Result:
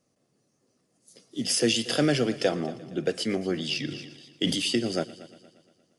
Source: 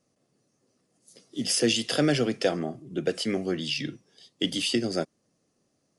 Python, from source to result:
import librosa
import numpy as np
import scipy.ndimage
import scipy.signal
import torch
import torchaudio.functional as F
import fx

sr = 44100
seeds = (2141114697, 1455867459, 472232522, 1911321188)

y = fx.echo_heads(x, sr, ms=117, heads='first and second', feedback_pct=48, wet_db=-20.5)
y = fx.sustainer(y, sr, db_per_s=58.0, at=(3.88, 4.56))